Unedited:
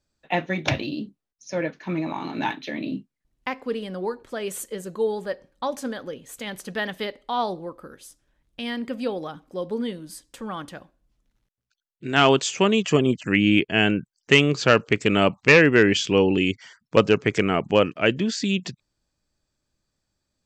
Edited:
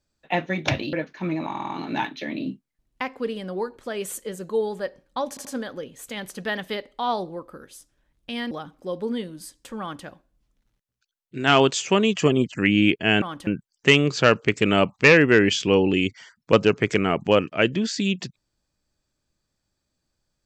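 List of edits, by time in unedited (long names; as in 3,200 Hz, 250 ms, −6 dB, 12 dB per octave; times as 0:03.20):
0:00.93–0:01.59: remove
0:02.15: stutter 0.05 s, 5 plays
0:05.75: stutter 0.08 s, 3 plays
0:08.81–0:09.20: remove
0:10.50–0:10.75: duplicate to 0:13.91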